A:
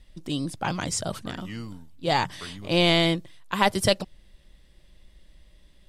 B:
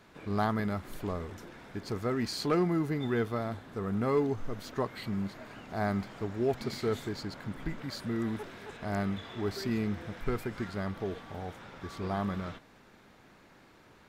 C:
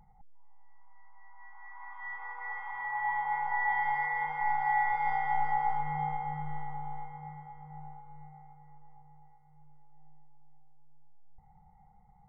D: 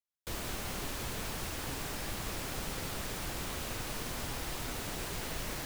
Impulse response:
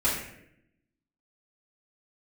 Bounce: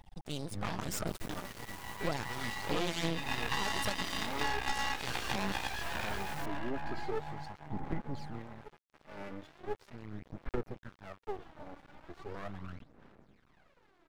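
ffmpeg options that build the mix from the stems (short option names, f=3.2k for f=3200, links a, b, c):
-filter_complex "[0:a]aphaser=in_gain=1:out_gain=1:delay=2.3:decay=0.51:speed=0.96:type=triangular,volume=-4.5dB[a];[1:a]lowpass=f=1.8k:p=1,aphaser=in_gain=1:out_gain=1:delay=3.5:decay=0.74:speed=0.39:type=sinusoidal,adelay=250,volume=-6.5dB[b];[2:a]aeval=exprs='0.119*(cos(1*acos(clip(val(0)/0.119,-1,1)))-cos(1*PI/2))+0.0422*(cos(7*acos(clip(val(0)/0.119,-1,1)))-cos(7*PI/2))':c=same,volume=2dB[c];[3:a]adelay=800,volume=-6.5dB[d];[a][b][c][d]amix=inputs=4:normalize=0,aeval=exprs='max(val(0),0)':c=same,acompressor=threshold=-28dB:ratio=6"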